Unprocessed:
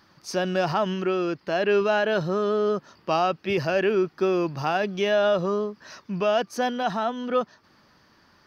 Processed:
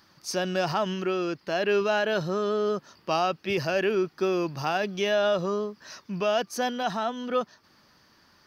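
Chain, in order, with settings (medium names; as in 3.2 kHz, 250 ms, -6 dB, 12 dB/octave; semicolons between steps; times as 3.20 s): treble shelf 4.1 kHz +8.5 dB; trim -3 dB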